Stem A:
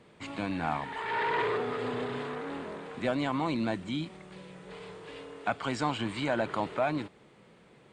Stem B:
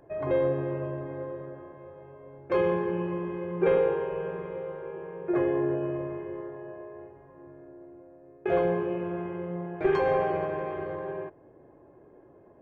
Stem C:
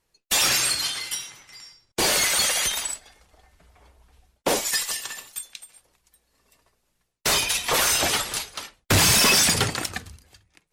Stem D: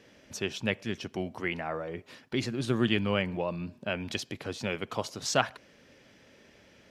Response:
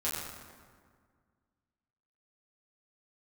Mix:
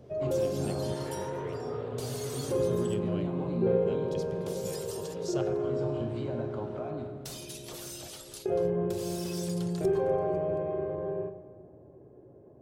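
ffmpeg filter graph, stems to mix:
-filter_complex "[0:a]acompressor=threshold=-36dB:ratio=5,lowpass=frequency=1100:poles=1,volume=0.5dB,asplit=2[link_01][link_02];[link_02]volume=-4.5dB[link_03];[1:a]equalizer=frequency=250:width=0.38:gain=8,volume=-5.5dB,asplit=2[link_04][link_05];[link_05]volume=-11dB[link_06];[2:a]acompressor=threshold=-26dB:ratio=6,volume=-13dB,asplit=3[link_07][link_08][link_09];[link_07]atrim=end=5.14,asetpts=PTS-STARTPTS,afade=type=out:start_time=5.136:duration=0.004:curve=hsin[link_10];[link_08]atrim=start=5.14:end=7.08,asetpts=PTS-STARTPTS,volume=0[link_11];[link_09]atrim=start=7.08,asetpts=PTS-STARTPTS,afade=type=in:duration=0.004:curve=hsin[link_12];[link_10][link_11][link_12]concat=n=3:v=0:a=1[link_13];[3:a]equalizer=frequency=2500:width_type=o:width=1.4:gain=-5,volume=-10dB,asplit=2[link_14][link_15];[link_15]volume=-15dB[link_16];[link_01][link_04][link_13]amix=inputs=3:normalize=0,acompressor=threshold=-29dB:ratio=6,volume=0dB[link_17];[4:a]atrim=start_sample=2205[link_18];[link_03][link_06][link_16]amix=inputs=3:normalize=0[link_19];[link_19][link_18]afir=irnorm=-1:irlink=0[link_20];[link_14][link_17][link_20]amix=inputs=3:normalize=0,equalizer=frequency=125:width_type=o:width=1:gain=5,equalizer=frequency=250:width_type=o:width=1:gain=-5,equalizer=frequency=1000:width_type=o:width=1:gain=-6,equalizer=frequency=2000:width_type=o:width=1:gain=-10"

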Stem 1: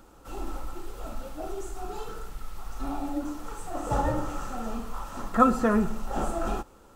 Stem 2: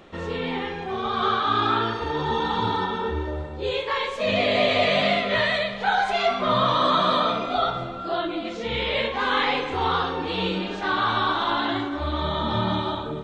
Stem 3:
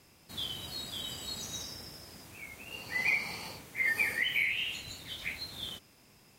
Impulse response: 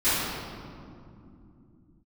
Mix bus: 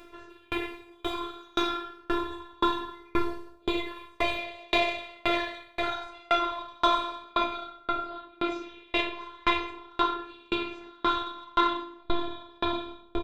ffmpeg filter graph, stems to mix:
-filter_complex "[0:a]acompressor=threshold=-26dB:ratio=6,adelay=700,volume=-3dB[link_01];[1:a]aecho=1:1:2.1:0.78,volume=1dB,asplit=2[link_02][link_03];[link_03]volume=-15dB[link_04];[2:a]volume=-0.5dB[link_05];[3:a]atrim=start_sample=2205[link_06];[link_04][link_06]afir=irnorm=-1:irlink=0[link_07];[link_01][link_02][link_05][link_07]amix=inputs=4:normalize=0,asoftclip=type=tanh:threshold=-4.5dB,afftfilt=real='hypot(re,im)*cos(PI*b)':imag='0':win_size=512:overlap=0.75,aeval=exprs='val(0)*pow(10,-36*if(lt(mod(1.9*n/s,1),2*abs(1.9)/1000),1-mod(1.9*n/s,1)/(2*abs(1.9)/1000),(mod(1.9*n/s,1)-2*abs(1.9)/1000)/(1-2*abs(1.9)/1000))/20)':channel_layout=same"

